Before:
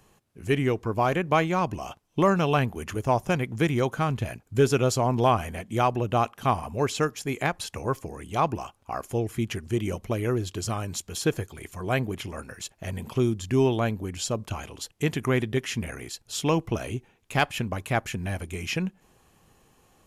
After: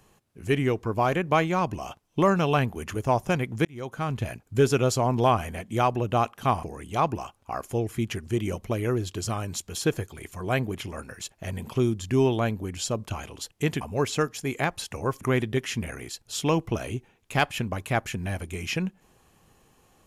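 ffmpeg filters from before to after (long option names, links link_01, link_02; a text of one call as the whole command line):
ffmpeg -i in.wav -filter_complex "[0:a]asplit=5[link_01][link_02][link_03][link_04][link_05];[link_01]atrim=end=3.65,asetpts=PTS-STARTPTS,afade=type=out:start_time=3.646:duration=0.004:curve=hsin[link_06];[link_02]atrim=start=3.65:end=6.632,asetpts=PTS-STARTPTS,afade=type=in:duration=0.59[link_07];[link_03]atrim=start=8.028:end=15.212[link_08];[link_04]atrim=start=6.628:end=8.032[link_09];[link_05]atrim=start=15.208[link_10];[link_06][link_07]concat=n=2:v=0:a=1[link_11];[link_11][link_08]acrossfade=duration=0.004:curve1=hsin:curve2=hsin[link_12];[link_12][link_09]acrossfade=duration=0.004:curve1=hsin:curve2=hsin[link_13];[link_13][link_10]acrossfade=duration=0.004:curve1=hsin:curve2=hsin" out.wav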